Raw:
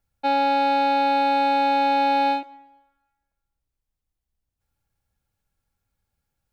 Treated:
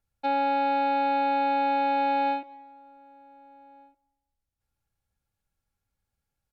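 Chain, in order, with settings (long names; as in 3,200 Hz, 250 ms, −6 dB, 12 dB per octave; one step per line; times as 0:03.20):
slap from a distant wall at 260 metres, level −26 dB
treble cut that deepens with the level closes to 2,900 Hz, closed at −21.5 dBFS
level −4.5 dB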